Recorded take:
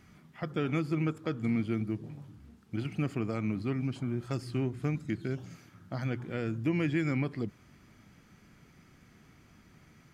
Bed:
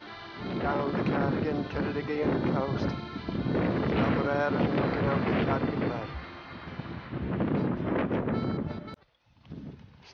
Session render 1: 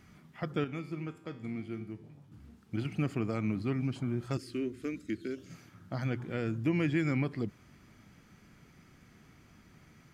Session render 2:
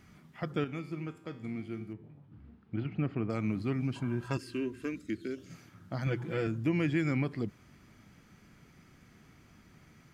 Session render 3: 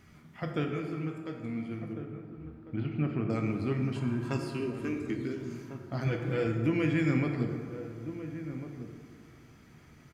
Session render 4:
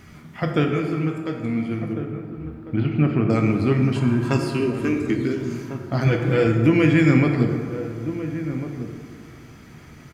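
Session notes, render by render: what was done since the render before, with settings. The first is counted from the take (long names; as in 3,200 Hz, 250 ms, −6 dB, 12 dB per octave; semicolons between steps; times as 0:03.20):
0:00.64–0:02.32: tuned comb filter 87 Hz, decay 0.68 s, mix 70%; 0:04.37–0:05.50: phaser with its sweep stopped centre 340 Hz, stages 4
0:01.93–0:03.30: high-frequency loss of the air 350 metres; 0:03.94–0:04.96: hollow resonant body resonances 990/1,600/2,700 Hz, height 15 dB; 0:06.06–0:06.47: comb filter 6 ms, depth 82%
slap from a distant wall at 240 metres, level −11 dB; dense smooth reverb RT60 2.1 s, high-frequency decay 0.5×, DRR 2.5 dB
level +11.5 dB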